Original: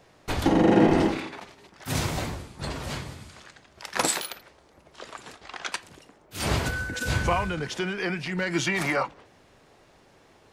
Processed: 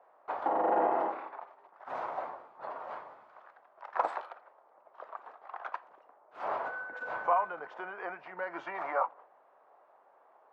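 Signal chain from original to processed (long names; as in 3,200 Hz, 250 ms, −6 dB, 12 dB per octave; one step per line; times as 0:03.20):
flat-topped band-pass 870 Hz, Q 1.3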